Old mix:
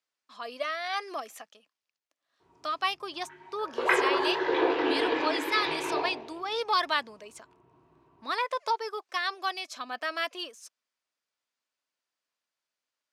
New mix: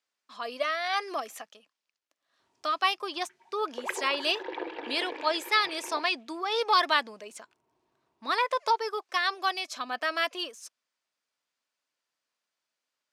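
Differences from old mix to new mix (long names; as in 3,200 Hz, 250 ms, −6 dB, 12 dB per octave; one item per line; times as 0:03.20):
speech +3.0 dB
reverb: off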